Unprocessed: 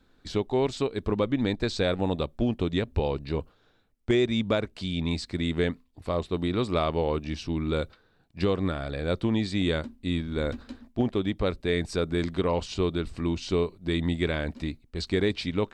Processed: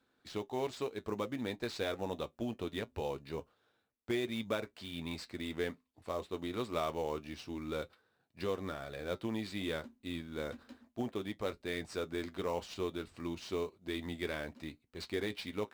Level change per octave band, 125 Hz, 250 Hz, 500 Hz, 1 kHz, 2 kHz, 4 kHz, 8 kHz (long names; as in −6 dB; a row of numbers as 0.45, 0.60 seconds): −16.5, −12.5, −10.0, −8.0, −8.5, −10.0, −7.0 decibels